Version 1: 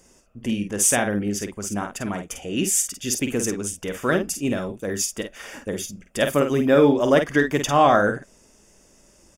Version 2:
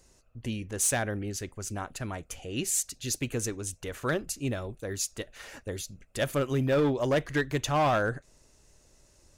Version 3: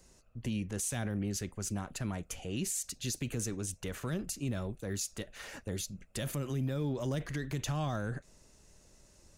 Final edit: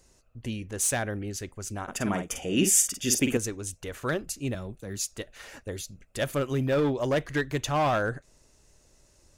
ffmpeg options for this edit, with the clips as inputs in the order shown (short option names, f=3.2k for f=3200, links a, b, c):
-filter_complex "[1:a]asplit=3[a][b][c];[a]atrim=end=1.882[d];[0:a]atrim=start=1.878:end=3.372[e];[b]atrim=start=3.368:end=4.552[f];[2:a]atrim=start=4.548:end=4.972[g];[c]atrim=start=4.968[h];[d][e]acrossfade=d=0.004:c1=hsin:c2=hsin[i];[i][f]acrossfade=d=0.004:c1=hsin:c2=hsin[j];[j][g]acrossfade=d=0.004:c1=hsin:c2=hsin[k];[k][h]acrossfade=d=0.004:c1=hsin:c2=hsin"